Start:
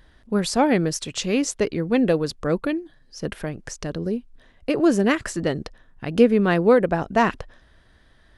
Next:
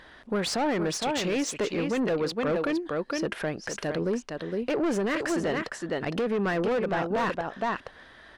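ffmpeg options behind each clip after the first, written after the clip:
-filter_complex "[0:a]aecho=1:1:461:0.335,asplit=2[a][b];[b]highpass=f=720:p=1,volume=25dB,asoftclip=type=tanh:threshold=-3dB[c];[a][c]amix=inputs=2:normalize=0,lowpass=f=2.3k:p=1,volume=-6dB,alimiter=limit=-14.5dB:level=0:latency=1:release=281,volume=-6.5dB"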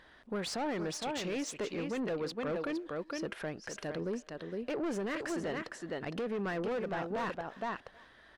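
-filter_complex "[0:a]asplit=2[a][b];[b]adelay=320,highpass=300,lowpass=3.4k,asoftclip=type=hard:threshold=-29.5dB,volume=-20dB[c];[a][c]amix=inputs=2:normalize=0,volume=-8.5dB"

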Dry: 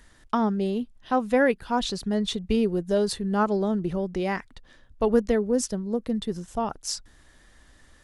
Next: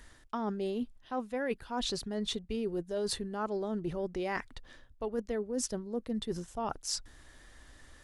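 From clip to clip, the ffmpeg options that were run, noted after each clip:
-af "equalizer=f=190:t=o:w=0.29:g=-7.5,areverse,acompressor=threshold=-31dB:ratio=10,areverse"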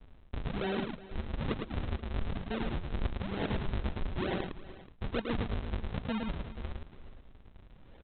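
-af "aresample=8000,acrusher=samples=32:mix=1:aa=0.000001:lfo=1:lforange=51.2:lforate=1.1,aresample=44100,aecho=1:1:108|368|480:0.596|0.119|0.119"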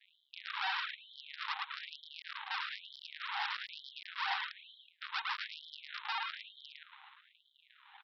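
-af "aresample=11025,asoftclip=type=hard:threshold=-33dB,aresample=44100,afftfilt=real='re*gte(b*sr/1024,730*pow(3100/730,0.5+0.5*sin(2*PI*1.1*pts/sr)))':imag='im*gte(b*sr/1024,730*pow(3100/730,0.5+0.5*sin(2*PI*1.1*pts/sr)))':win_size=1024:overlap=0.75,volume=8.5dB"

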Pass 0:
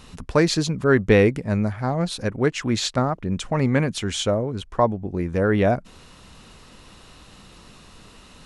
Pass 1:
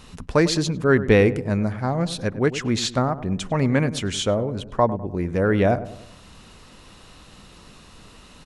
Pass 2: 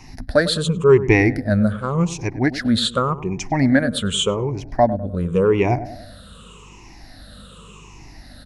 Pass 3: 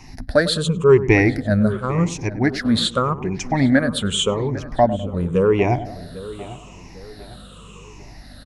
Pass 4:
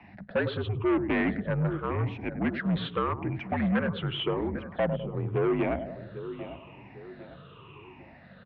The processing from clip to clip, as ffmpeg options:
-filter_complex "[0:a]asplit=2[a][b];[b]adelay=101,lowpass=f=1.1k:p=1,volume=-13dB,asplit=2[c][d];[d]adelay=101,lowpass=f=1.1k:p=1,volume=0.5,asplit=2[e][f];[f]adelay=101,lowpass=f=1.1k:p=1,volume=0.5,asplit=2[g][h];[h]adelay=101,lowpass=f=1.1k:p=1,volume=0.5,asplit=2[i][j];[j]adelay=101,lowpass=f=1.1k:p=1,volume=0.5[k];[a][c][e][g][i][k]amix=inputs=6:normalize=0"
-af "afftfilt=real='re*pow(10,19/40*sin(2*PI*(0.73*log(max(b,1)*sr/1024/100)/log(2)-(-0.87)*(pts-256)/sr)))':imag='im*pow(10,19/40*sin(2*PI*(0.73*log(max(b,1)*sr/1024/100)/log(2)-(-0.87)*(pts-256)/sr)))':win_size=1024:overlap=0.75,aeval=exprs='val(0)+0.00631*(sin(2*PI*50*n/s)+sin(2*PI*2*50*n/s)/2+sin(2*PI*3*50*n/s)/3+sin(2*PI*4*50*n/s)/4+sin(2*PI*5*50*n/s)/5)':c=same,volume=-1dB"
-filter_complex "[0:a]asplit=2[a][b];[b]adelay=800,lowpass=f=2.3k:p=1,volume=-16.5dB,asplit=2[c][d];[d]adelay=800,lowpass=f=2.3k:p=1,volume=0.41,asplit=2[e][f];[f]adelay=800,lowpass=f=2.3k:p=1,volume=0.41,asplit=2[g][h];[h]adelay=800,lowpass=f=2.3k:p=1,volume=0.41[i];[a][c][e][g][i]amix=inputs=5:normalize=0"
-af "asoftclip=type=tanh:threshold=-17dB,highpass=f=160:t=q:w=0.5412,highpass=f=160:t=q:w=1.307,lowpass=f=3k:t=q:w=0.5176,lowpass=f=3k:t=q:w=0.7071,lowpass=f=3k:t=q:w=1.932,afreqshift=-57,volume=-4.5dB"

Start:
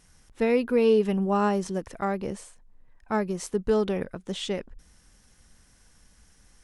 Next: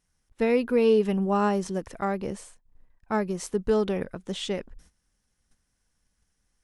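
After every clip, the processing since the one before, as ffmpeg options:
-af "agate=range=-16dB:threshold=-51dB:ratio=16:detection=peak"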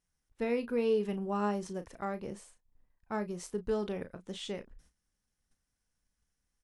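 -filter_complex "[0:a]asplit=2[a][b];[b]adelay=34,volume=-11dB[c];[a][c]amix=inputs=2:normalize=0,volume=-9dB"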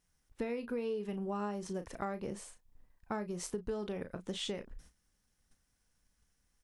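-af "acompressor=threshold=-41dB:ratio=6,volume=6dB"

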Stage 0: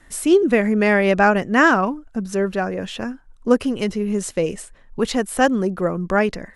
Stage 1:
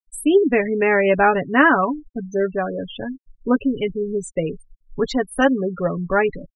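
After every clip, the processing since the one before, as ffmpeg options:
-af "afftfilt=real='re*gte(hypot(re,im),0.0794)':imag='im*gte(hypot(re,im),0.0794)':win_size=1024:overlap=0.75,aecho=1:1:7.1:0.56,volume=-1dB"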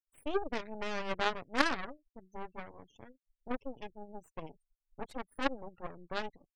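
-af "aeval=exprs='0.841*(cos(1*acos(clip(val(0)/0.841,-1,1)))-cos(1*PI/2))+0.299*(cos(3*acos(clip(val(0)/0.841,-1,1)))-cos(3*PI/2))+0.0211*(cos(5*acos(clip(val(0)/0.841,-1,1)))-cos(5*PI/2))+0.0335*(cos(8*acos(clip(val(0)/0.841,-1,1)))-cos(8*PI/2))':c=same,volume=-7.5dB"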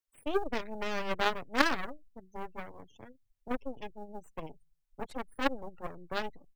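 -filter_complex "[0:a]acrossover=split=100|890|2000[a][b][c][d];[a]aecho=1:1:113|226|339:0.2|0.0698|0.0244[e];[c]acrusher=bits=5:mode=log:mix=0:aa=0.000001[f];[e][b][f][d]amix=inputs=4:normalize=0,volume=2.5dB"

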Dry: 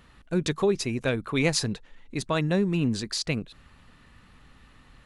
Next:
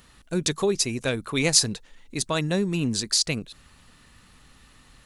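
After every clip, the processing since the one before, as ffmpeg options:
-af "bass=f=250:g=-1,treble=f=4k:g=12"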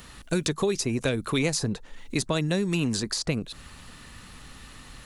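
-filter_complex "[0:a]acrossover=split=620|1500[a][b][c];[a]acompressor=threshold=-33dB:ratio=4[d];[b]acompressor=threshold=-47dB:ratio=4[e];[c]acompressor=threshold=-40dB:ratio=4[f];[d][e][f]amix=inputs=3:normalize=0,volume=8dB"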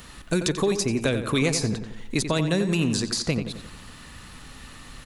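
-filter_complex "[0:a]asplit=2[a][b];[b]adelay=89,lowpass=f=3.5k:p=1,volume=-8.5dB,asplit=2[c][d];[d]adelay=89,lowpass=f=3.5k:p=1,volume=0.5,asplit=2[e][f];[f]adelay=89,lowpass=f=3.5k:p=1,volume=0.5,asplit=2[g][h];[h]adelay=89,lowpass=f=3.5k:p=1,volume=0.5,asplit=2[i][j];[j]adelay=89,lowpass=f=3.5k:p=1,volume=0.5,asplit=2[k][l];[l]adelay=89,lowpass=f=3.5k:p=1,volume=0.5[m];[a][c][e][g][i][k][m]amix=inputs=7:normalize=0,volume=2dB"

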